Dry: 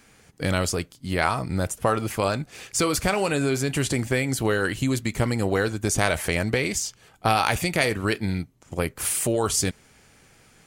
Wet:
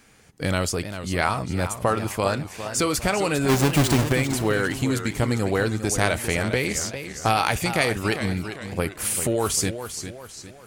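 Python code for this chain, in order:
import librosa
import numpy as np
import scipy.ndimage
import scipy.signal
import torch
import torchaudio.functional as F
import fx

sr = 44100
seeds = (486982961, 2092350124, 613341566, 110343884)

y = fx.halfwave_hold(x, sr, at=(3.48, 4.11), fade=0.02)
y = fx.echo_warbled(y, sr, ms=400, feedback_pct=43, rate_hz=2.8, cents=152, wet_db=-10.0)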